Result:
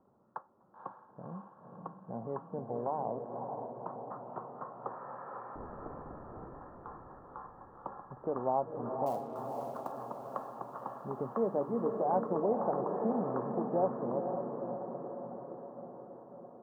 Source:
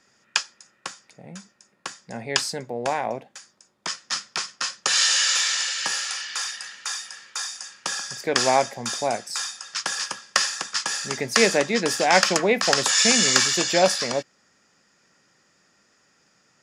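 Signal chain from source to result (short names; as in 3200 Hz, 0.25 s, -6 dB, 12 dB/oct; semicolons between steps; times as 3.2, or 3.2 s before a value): 5.55–6.55 median filter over 41 samples; steep low-pass 1100 Hz 48 dB/oct; compressor 1.5:1, threshold -48 dBFS, peak gain reduction 12.5 dB; 9.06–9.92 companded quantiser 6-bit; diffused feedback echo 0.515 s, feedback 64%, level -5 dB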